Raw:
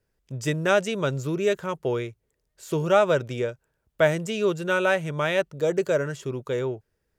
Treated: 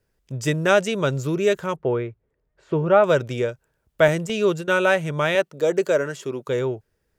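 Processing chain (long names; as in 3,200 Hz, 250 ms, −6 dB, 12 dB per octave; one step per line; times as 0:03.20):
0:01.76–0:03.04: low-pass filter 1,800 Hz 12 dB per octave
0:04.08–0:04.68: noise gate with hold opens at −20 dBFS
0:05.35–0:06.48: high-pass filter 210 Hz 12 dB per octave
level +3.5 dB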